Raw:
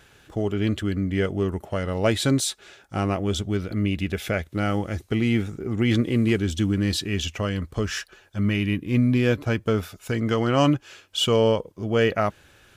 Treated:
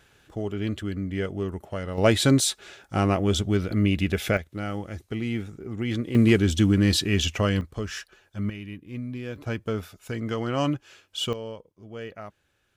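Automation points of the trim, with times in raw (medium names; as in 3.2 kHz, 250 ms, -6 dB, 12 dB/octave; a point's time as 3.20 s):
-5 dB
from 1.98 s +2 dB
from 4.37 s -7 dB
from 6.15 s +3 dB
from 7.61 s -5.5 dB
from 8.50 s -14 dB
from 9.36 s -6 dB
from 11.33 s -17 dB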